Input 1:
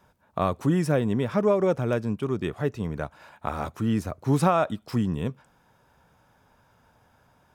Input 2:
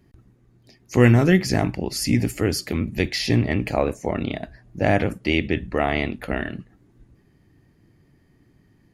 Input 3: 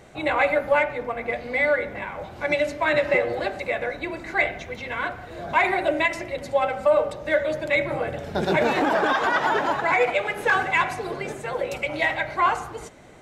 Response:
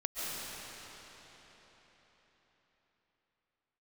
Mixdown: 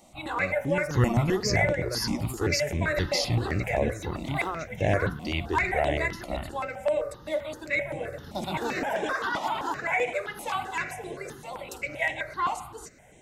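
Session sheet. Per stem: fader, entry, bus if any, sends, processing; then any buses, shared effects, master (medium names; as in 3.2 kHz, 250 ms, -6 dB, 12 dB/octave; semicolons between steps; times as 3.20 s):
-7.5 dB, 0.00 s, no send, none
-1.5 dB, 0.00 s, no send, fifteen-band graphic EQ 250 Hz -11 dB, 2.5 kHz -6 dB, 6.3 kHz +4 dB
-5.0 dB, 0.00 s, no send, treble shelf 5.3 kHz +10.5 dB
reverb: none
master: stepped phaser 7.7 Hz 430–4600 Hz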